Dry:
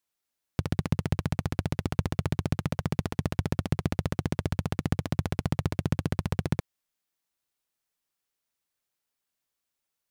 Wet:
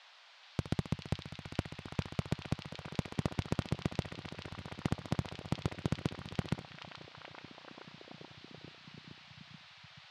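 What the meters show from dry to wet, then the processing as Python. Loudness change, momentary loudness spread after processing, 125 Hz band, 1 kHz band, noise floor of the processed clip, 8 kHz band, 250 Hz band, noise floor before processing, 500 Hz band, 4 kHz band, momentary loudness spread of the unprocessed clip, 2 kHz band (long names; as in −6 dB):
−9.0 dB, 15 LU, −9.5 dB, −7.0 dB, −58 dBFS, −8.5 dB, −8.0 dB, −85 dBFS, −7.5 dB, −2.5 dB, 2 LU, −5.5 dB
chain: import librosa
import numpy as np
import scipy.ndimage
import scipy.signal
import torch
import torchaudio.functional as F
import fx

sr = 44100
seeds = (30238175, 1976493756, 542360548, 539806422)

p1 = scipy.signal.sosfilt(scipy.signal.butter(2, 9100.0, 'lowpass', fs=sr, output='sos'), x)
p2 = fx.low_shelf(p1, sr, hz=100.0, db=-7.5)
p3 = fx.notch(p2, sr, hz=1700.0, q=9.5)
p4 = fx.level_steps(p3, sr, step_db=14)
p5 = fx.dmg_noise_band(p4, sr, seeds[0], low_hz=650.0, high_hz=4500.0, level_db=-57.0)
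p6 = p5 + fx.echo_stepped(p5, sr, ms=431, hz=3500.0, octaves=-0.7, feedback_pct=70, wet_db=0.0, dry=0)
y = F.gain(torch.from_numpy(p6), -2.5).numpy()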